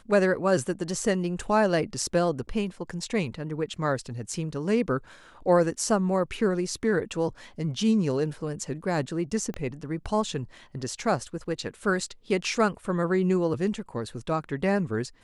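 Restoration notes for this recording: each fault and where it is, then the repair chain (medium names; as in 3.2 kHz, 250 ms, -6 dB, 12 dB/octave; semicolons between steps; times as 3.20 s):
9.54 s: pop -23 dBFS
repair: de-click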